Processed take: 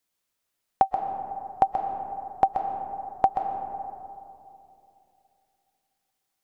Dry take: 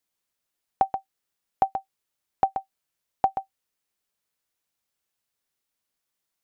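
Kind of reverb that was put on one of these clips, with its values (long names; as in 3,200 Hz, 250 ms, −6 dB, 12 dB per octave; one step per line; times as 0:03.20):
comb and all-pass reverb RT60 2.8 s, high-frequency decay 0.3×, pre-delay 100 ms, DRR 5.5 dB
level +2 dB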